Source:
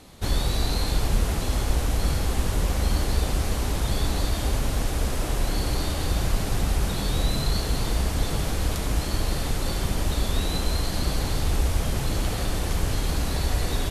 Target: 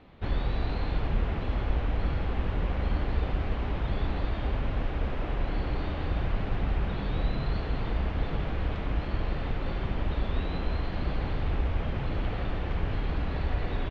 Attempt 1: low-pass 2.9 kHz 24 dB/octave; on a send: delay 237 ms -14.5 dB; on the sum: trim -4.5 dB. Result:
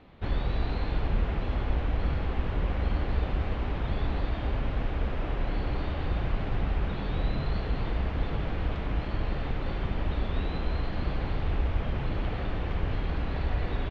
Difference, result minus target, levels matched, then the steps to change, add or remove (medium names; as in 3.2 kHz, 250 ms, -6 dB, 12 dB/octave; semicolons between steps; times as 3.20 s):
echo 69 ms late
change: delay 168 ms -14.5 dB